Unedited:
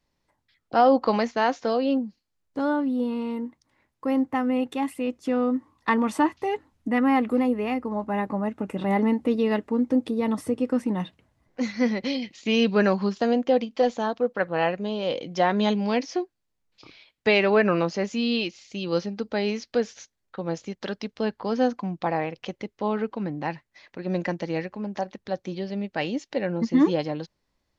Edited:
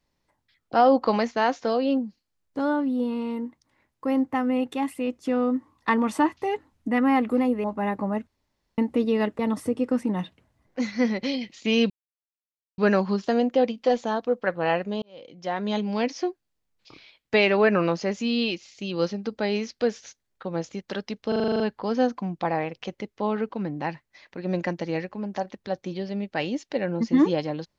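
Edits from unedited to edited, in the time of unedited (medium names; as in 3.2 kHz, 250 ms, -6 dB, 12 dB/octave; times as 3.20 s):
7.64–7.95 s: delete
8.58–9.09 s: room tone
9.70–10.20 s: delete
12.71 s: insert silence 0.88 s
14.95–16.08 s: fade in
21.21 s: stutter 0.04 s, 9 plays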